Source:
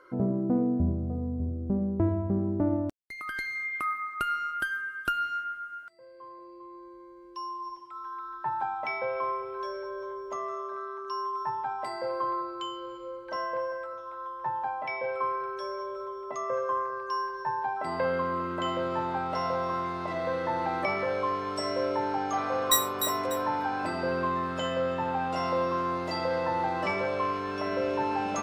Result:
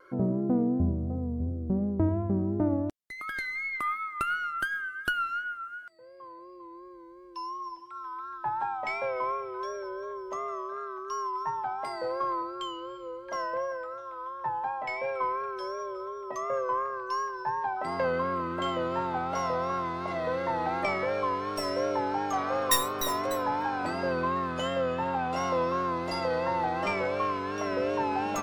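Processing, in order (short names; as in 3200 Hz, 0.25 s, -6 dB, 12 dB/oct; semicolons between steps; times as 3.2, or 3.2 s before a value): tracing distortion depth 0.12 ms; vibrato 2.8 Hz 62 cents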